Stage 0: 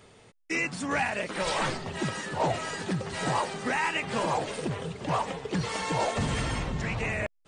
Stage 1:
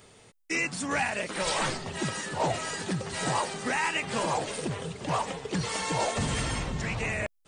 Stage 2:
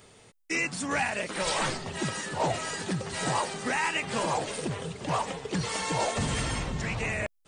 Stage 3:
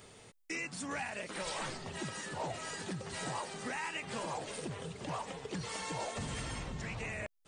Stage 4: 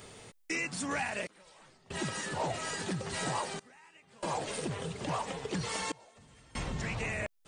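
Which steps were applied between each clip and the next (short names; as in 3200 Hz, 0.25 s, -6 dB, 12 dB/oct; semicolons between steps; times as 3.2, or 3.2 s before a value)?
high shelf 5500 Hz +9 dB; gain -1 dB
nothing audible
compressor 2:1, threshold -43 dBFS, peak gain reduction 11 dB; gain -1 dB
step gate "xxxxxx...xx" 71 bpm -24 dB; gain +5 dB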